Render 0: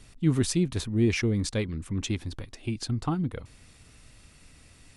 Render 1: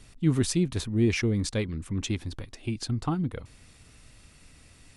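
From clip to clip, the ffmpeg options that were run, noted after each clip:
-af anull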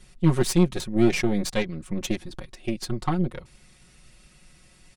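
-af "aeval=exprs='0.237*(cos(1*acos(clip(val(0)/0.237,-1,1)))-cos(1*PI/2))+0.0299*(cos(6*acos(clip(val(0)/0.237,-1,1)))-cos(6*PI/2))+0.00944*(cos(7*acos(clip(val(0)/0.237,-1,1)))-cos(7*PI/2))':c=same,aecho=1:1:5.5:0.96"

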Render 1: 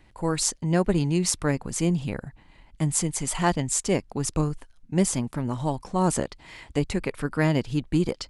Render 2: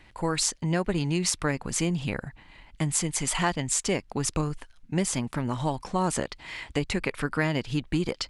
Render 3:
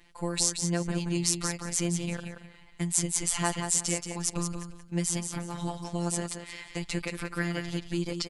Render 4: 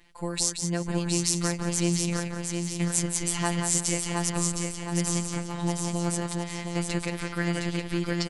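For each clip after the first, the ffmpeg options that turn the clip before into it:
-af "equalizer=f=2.4k:t=o:w=2.7:g=7,acompressor=threshold=-24dB:ratio=2.5"
-af "bass=f=250:g=1,treble=f=4k:g=7,aecho=1:1:178|356|534:0.447|0.103|0.0236,afftfilt=real='hypot(re,im)*cos(PI*b)':imag='0':win_size=1024:overlap=0.75,volume=-3dB"
-af "aecho=1:1:714|1428|2142|2856|3570:0.562|0.242|0.104|0.0447|0.0192"

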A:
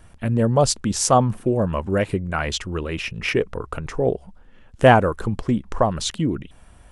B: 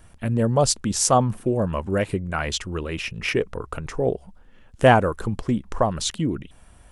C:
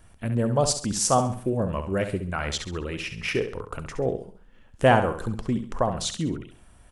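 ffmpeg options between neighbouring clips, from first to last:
-af "highshelf=f=6.4k:g=5,volume=-2dB"
-af "aecho=1:1:67|134|201|268:0.355|0.131|0.0486|0.018,volume=-3.5dB"

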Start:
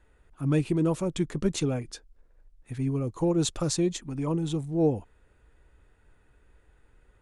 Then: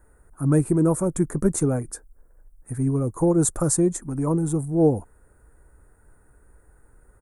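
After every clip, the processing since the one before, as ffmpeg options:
-af "firequalizer=gain_entry='entry(1500,0);entry(2900,-24);entry(9000,11)':delay=0.05:min_phase=1,volume=5.5dB"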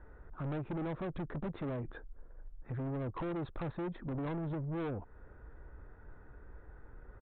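-af "acompressor=threshold=-30dB:ratio=4,aresample=8000,asoftclip=type=tanh:threshold=-37.5dB,aresample=44100,volume=2.5dB"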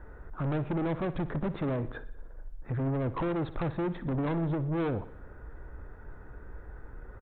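-af "aecho=1:1:60|120|180|240|300|360:0.168|0.0974|0.0565|0.0328|0.019|0.011,volume=7dB"

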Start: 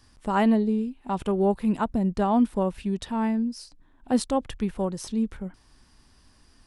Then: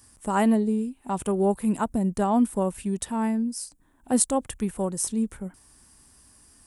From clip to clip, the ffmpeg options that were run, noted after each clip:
-af "highpass=f=51:p=1,highshelf=f=6.2k:t=q:w=1.5:g=12.5"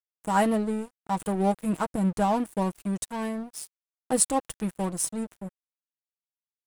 -af "aecho=1:1:6.3:0.57,aeval=exprs='sgn(val(0))*max(abs(val(0))-0.0158,0)':c=same"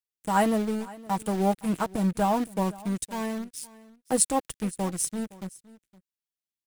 -filter_complex "[0:a]acrossover=split=470|1600[a][b][c];[b]acrusher=bits=6:mix=0:aa=0.000001[d];[a][d][c]amix=inputs=3:normalize=0,aecho=1:1:515:0.0944"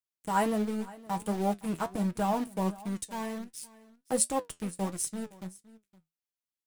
-af "flanger=delay=8.2:depth=4.4:regen=66:speed=1.4:shape=triangular"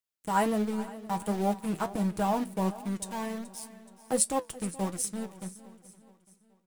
-af "aecho=1:1:426|852|1278|1704:0.126|0.0604|0.029|0.0139,volume=1dB"

